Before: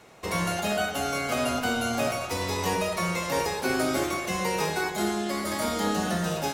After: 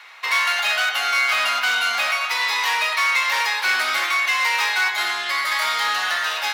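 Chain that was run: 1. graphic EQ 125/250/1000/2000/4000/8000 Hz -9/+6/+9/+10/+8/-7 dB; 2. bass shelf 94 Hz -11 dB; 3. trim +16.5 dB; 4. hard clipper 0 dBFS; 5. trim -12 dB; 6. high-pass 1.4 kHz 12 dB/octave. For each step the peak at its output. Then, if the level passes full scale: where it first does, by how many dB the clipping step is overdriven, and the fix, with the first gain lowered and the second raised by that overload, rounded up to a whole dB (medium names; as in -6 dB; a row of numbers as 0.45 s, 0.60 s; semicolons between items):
-6.0 dBFS, -6.5 dBFS, +10.0 dBFS, 0.0 dBFS, -12.0 dBFS, -8.5 dBFS; step 3, 10.0 dB; step 3 +6.5 dB, step 5 -2 dB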